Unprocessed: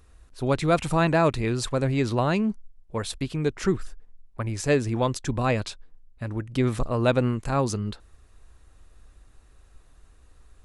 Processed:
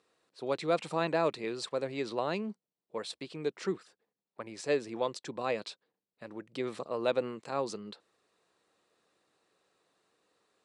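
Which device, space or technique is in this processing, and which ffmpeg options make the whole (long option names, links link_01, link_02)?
television speaker: -af "highpass=frequency=200:width=0.5412,highpass=frequency=200:width=1.3066,equalizer=frequency=250:width_type=q:width=4:gain=-8,equalizer=frequency=490:width_type=q:width=4:gain=4,equalizer=frequency=1500:width_type=q:width=4:gain=-3,equalizer=frequency=4200:width_type=q:width=4:gain=4,equalizer=frequency=6500:width_type=q:width=4:gain=-5,lowpass=frequency=8400:width=0.5412,lowpass=frequency=8400:width=1.3066,volume=-8dB"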